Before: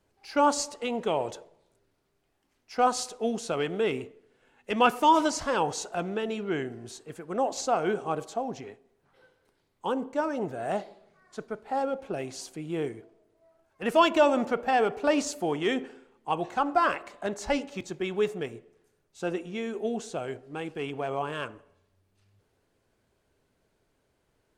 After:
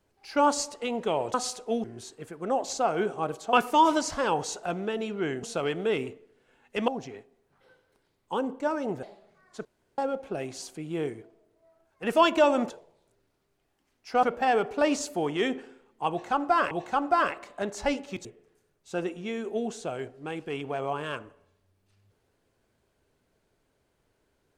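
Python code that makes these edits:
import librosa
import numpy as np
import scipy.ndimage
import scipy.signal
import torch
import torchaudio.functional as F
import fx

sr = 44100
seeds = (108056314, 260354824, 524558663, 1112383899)

y = fx.edit(x, sr, fx.move(start_s=1.34, length_s=1.53, to_s=14.49),
    fx.swap(start_s=3.37, length_s=1.45, other_s=6.72, other_length_s=1.69),
    fx.cut(start_s=10.56, length_s=0.26),
    fx.room_tone_fill(start_s=11.44, length_s=0.33),
    fx.repeat(start_s=16.35, length_s=0.62, count=2),
    fx.cut(start_s=17.89, length_s=0.65), tone=tone)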